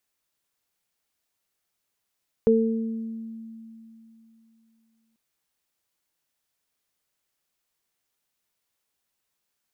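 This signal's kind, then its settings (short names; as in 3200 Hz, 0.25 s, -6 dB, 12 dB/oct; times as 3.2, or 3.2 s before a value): additive tone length 2.69 s, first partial 225 Hz, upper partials 5 dB, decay 3.19 s, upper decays 0.93 s, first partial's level -19 dB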